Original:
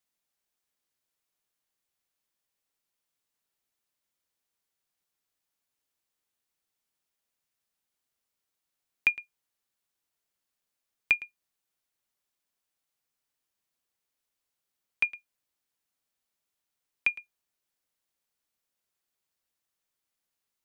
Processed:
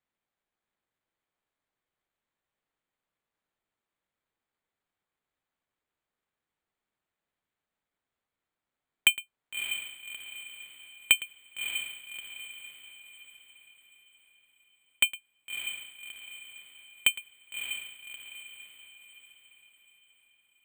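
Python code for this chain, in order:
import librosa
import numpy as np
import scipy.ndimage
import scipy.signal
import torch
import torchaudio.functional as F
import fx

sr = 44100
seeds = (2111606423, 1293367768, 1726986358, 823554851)

y = np.repeat(scipy.signal.resample_poly(x, 1, 8), 8)[:len(x)]
y = fx.echo_diffused(y, sr, ms=620, feedback_pct=46, wet_db=-7)
y = y * librosa.db_to_amplitude(3.0)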